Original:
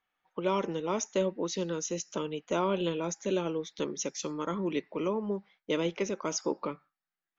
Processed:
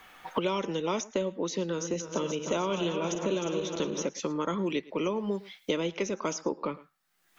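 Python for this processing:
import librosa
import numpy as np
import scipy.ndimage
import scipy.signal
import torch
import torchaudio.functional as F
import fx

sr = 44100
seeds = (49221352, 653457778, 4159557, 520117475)

y = fx.reverse_delay_fb(x, sr, ms=152, feedback_pct=72, wet_db=-9, at=(1.63, 4.09))
y = y + 10.0 ** (-22.5 / 20.0) * np.pad(y, (int(108 * sr / 1000.0), 0))[:len(y)]
y = fx.band_squash(y, sr, depth_pct=100)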